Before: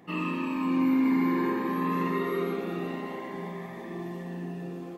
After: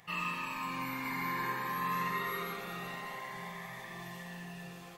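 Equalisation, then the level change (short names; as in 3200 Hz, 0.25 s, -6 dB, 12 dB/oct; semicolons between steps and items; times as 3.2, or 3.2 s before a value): passive tone stack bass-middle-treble 10-0-10; dynamic EQ 2900 Hz, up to -5 dB, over -57 dBFS, Q 1.5; bell 130 Hz +9.5 dB 0.26 oct; +7.5 dB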